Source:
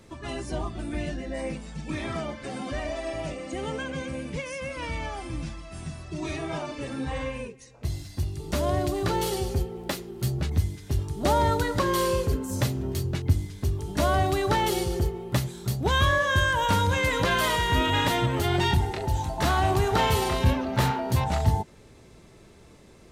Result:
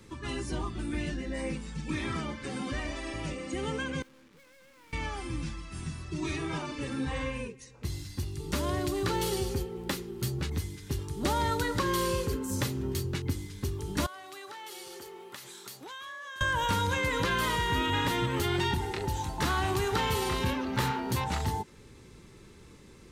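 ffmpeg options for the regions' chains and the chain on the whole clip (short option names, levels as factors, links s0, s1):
-filter_complex "[0:a]asettb=1/sr,asplit=3[s0][s1][s2];[s0]atrim=end=4.024[s3];[s1]atrim=start=4.02:end=4.93,asetpts=PTS-STARTPTS,afade=t=in:d=0.004:c=qsin,afade=t=out:st=0.906:d=0.004:c=qsin,highpass=220,lowpass=2600,acrusher=bits=5:mix=0:aa=0.5,aeval=exprs='(tanh(501*val(0)+0.4)-tanh(0.4))/501':c=same[s4];[s2]atrim=start=4.926[s5];[s3][s4]acrossfade=d=0.004:c1=hsin:c2=qsin[s6];[s6][s5]acrossfade=d=0.004:c1=qsin:c2=hsin,asettb=1/sr,asplit=3[s7][s8][s9];[s7]atrim=end=14.064[s10];[s8]atrim=start=14.06:end=16.41,asetpts=PTS-STARTPTS,afade=t=in:d=0.004:c=qsin,afade=t=out:st=2.346:d=0.004:c=qsin,highpass=640,acompressor=threshold=0.0112:ratio=8:attack=3.2:release=140:knee=1:detection=peak[s11];[s9]atrim=start=16.406[s12];[s10][s11]acrossfade=d=0.004:c1=hsin:c2=qsin[s13];[s13][s12]acrossfade=d=0.004:c1=qsin:c2=hsin,equalizer=f=660:t=o:w=0.36:g=-14.5,acrossover=split=260|1500[s14][s15][s16];[s14]acompressor=threshold=0.0251:ratio=4[s17];[s15]acompressor=threshold=0.0355:ratio=4[s18];[s16]acompressor=threshold=0.0224:ratio=4[s19];[s17][s18][s19]amix=inputs=3:normalize=0"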